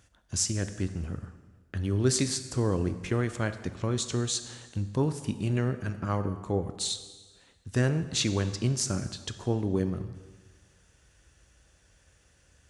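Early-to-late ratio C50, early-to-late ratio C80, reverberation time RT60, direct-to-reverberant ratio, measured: 11.5 dB, 12.5 dB, 1.4 s, 10.0 dB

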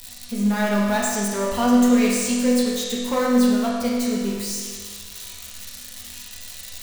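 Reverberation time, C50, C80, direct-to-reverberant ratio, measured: 1.7 s, -1.0 dB, 1.0 dB, -6.0 dB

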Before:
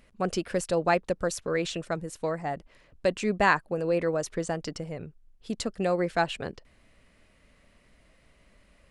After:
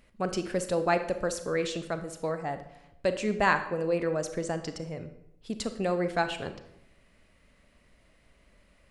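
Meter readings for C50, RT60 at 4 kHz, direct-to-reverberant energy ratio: 11.0 dB, 0.60 s, 9.0 dB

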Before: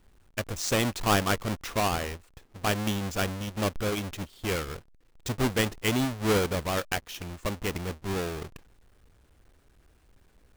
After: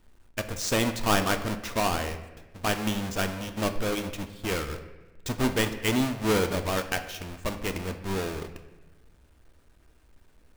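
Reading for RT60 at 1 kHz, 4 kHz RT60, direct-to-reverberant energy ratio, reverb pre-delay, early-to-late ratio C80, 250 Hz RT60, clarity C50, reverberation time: 1.0 s, 0.80 s, 6.5 dB, 3 ms, 12.5 dB, 1.4 s, 11.0 dB, 1.1 s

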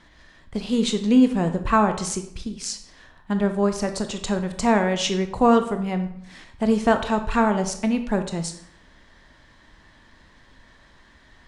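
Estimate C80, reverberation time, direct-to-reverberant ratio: 13.5 dB, 0.70 s, 7.0 dB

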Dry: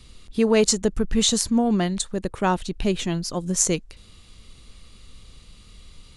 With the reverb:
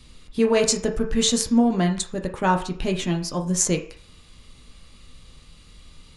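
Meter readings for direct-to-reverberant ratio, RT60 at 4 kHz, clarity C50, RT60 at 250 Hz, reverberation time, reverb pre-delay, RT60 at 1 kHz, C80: 2.0 dB, 0.55 s, 10.5 dB, 0.40 s, 0.45 s, 3 ms, 0.50 s, 14.5 dB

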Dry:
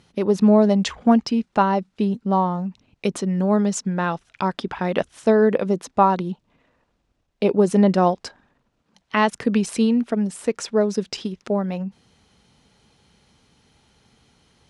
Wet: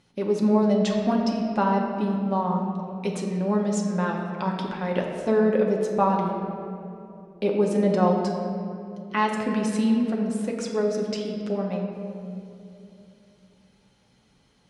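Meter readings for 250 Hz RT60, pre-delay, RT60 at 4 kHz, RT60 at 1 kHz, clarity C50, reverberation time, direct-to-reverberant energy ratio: 3.6 s, 4 ms, 1.4 s, 2.4 s, 3.0 dB, 2.8 s, -1.0 dB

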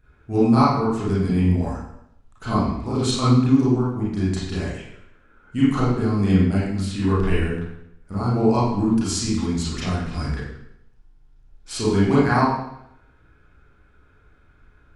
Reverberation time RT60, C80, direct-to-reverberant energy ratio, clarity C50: 0.80 s, 3.0 dB, -10.0 dB, -1.0 dB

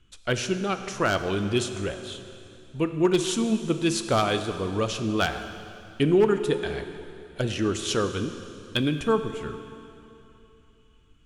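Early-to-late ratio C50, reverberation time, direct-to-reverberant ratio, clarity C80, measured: 9.0 dB, 2.9 s, 8.0 dB, 10.0 dB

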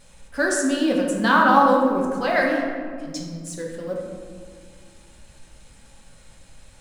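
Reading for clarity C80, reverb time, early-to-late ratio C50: 4.0 dB, 2.0 s, 2.5 dB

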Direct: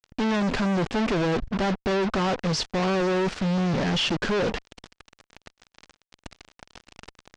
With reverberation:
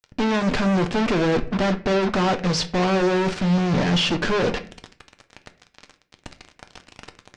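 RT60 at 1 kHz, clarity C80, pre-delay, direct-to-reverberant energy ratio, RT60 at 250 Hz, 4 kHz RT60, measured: 0.40 s, 19.5 dB, 7 ms, 7.0 dB, 0.60 s, 0.30 s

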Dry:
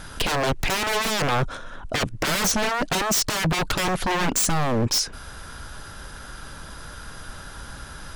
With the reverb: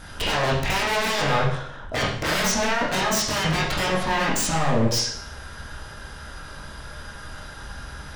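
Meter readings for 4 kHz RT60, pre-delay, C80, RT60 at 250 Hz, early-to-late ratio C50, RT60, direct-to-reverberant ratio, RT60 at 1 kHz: 0.60 s, 15 ms, 7.0 dB, 0.65 s, 3.5 dB, 0.65 s, -6.0 dB, 0.65 s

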